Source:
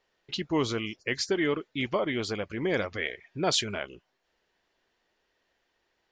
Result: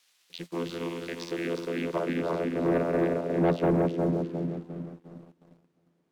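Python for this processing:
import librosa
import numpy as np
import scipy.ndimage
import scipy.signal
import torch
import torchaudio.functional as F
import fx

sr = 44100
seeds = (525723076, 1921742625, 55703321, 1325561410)

p1 = fx.reverse_delay_fb(x, sr, ms=178, feedback_pct=67, wet_db=-2.5)
p2 = fx.tilt_shelf(p1, sr, db=8.5, hz=630.0)
p3 = fx.vocoder(p2, sr, bands=16, carrier='saw', carrier_hz=85.0)
p4 = fx.quant_dither(p3, sr, seeds[0], bits=8, dither='triangular')
p5 = p3 + F.gain(torch.from_numpy(p4), -9.5).numpy()
p6 = fx.filter_sweep_bandpass(p5, sr, from_hz=3500.0, to_hz=240.0, start_s=1.5, end_s=4.68, q=0.82)
y = fx.leveller(p6, sr, passes=2)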